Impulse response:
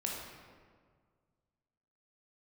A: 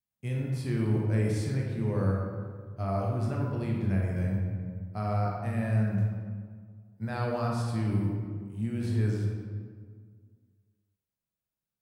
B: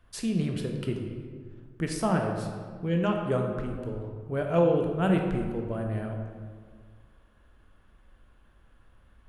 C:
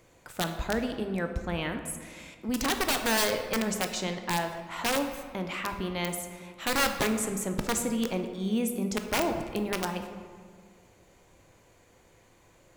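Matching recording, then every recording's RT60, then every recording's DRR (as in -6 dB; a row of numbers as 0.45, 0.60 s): A; 1.8, 1.8, 1.8 s; -2.0, 2.0, 6.0 dB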